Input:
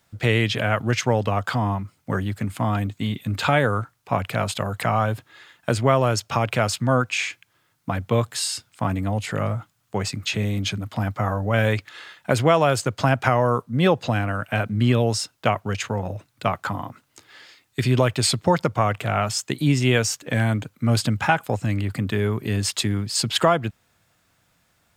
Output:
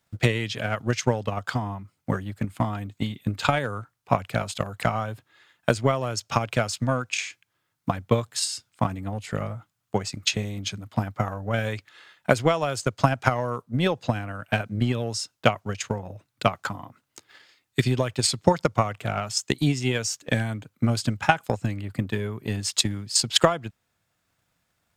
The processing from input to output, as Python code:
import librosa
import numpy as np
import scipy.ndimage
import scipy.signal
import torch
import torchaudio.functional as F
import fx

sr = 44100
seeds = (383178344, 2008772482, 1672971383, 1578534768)

y = fx.transient(x, sr, attack_db=12, sustain_db=-1)
y = fx.dynamic_eq(y, sr, hz=6100.0, q=0.87, threshold_db=-39.0, ratio=4.0, max_db=7)
y = F.gain(torch.from_numpy(y), -9.0).numpy()